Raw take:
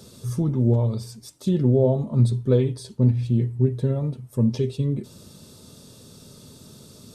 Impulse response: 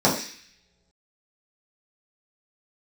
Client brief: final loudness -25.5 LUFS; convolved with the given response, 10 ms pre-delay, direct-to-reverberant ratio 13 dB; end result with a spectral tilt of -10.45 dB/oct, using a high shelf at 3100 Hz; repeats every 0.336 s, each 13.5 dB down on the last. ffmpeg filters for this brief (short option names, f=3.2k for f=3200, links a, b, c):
-filter_complex "[0:a]highshelf=f=3.1k:g=3.5,aecho=1:1:336|672:0.211|0.0444,asplit=2[a][b];[1:a]atrim=start_sample=2205,adelay=10[c];[b][c]afir=irnorm=-1:irlink=0,volume=-32dB[d];[a][d]amix=inputs=2:normalize=0,volume=-3dB"